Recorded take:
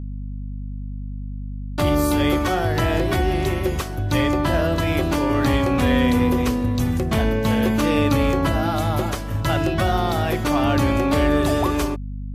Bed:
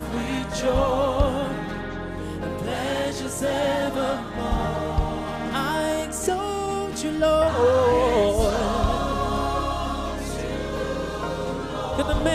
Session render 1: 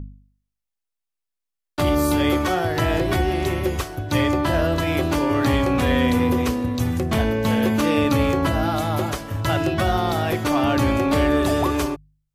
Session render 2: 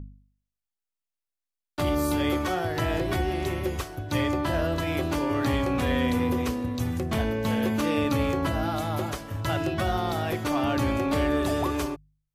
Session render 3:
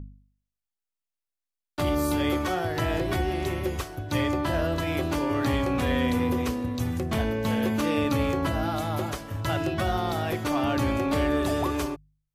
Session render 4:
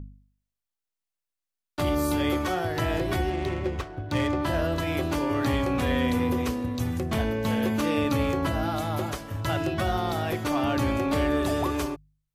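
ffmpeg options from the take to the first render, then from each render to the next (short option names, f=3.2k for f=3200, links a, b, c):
-af "bandreject=f=50:t=h:w=4,bandreject=f=100:t=h:w=4,bandreject=f=150:t=h:w=4,bandreject=f=200:t=h:w=4,bandreject=f=250:t=h:w=4"
-af "volume=-6dB"
-af anull
-filter_complex "[0:a]asettb=1/sr,asplit=3[a][b][c];[a]atrim=end=3.304[d];[b]atrim=start=3.3:end=4.42,asetpts=PTS-STARTPTS,afade=t=in:d=0.004:c=qsin,afade=t=out:st=1.116:d=0.004:c=qsin,adynamicsmooth=sensitivity=7:basefreq=1.8k[e];[c]atrim=start=4.416[f];[d][e]acrossfade=d=0.004:c1=hsin:c2=qsin[g];[g][f]acrossfade=d=0.004:c1=qsin:c2=hsin"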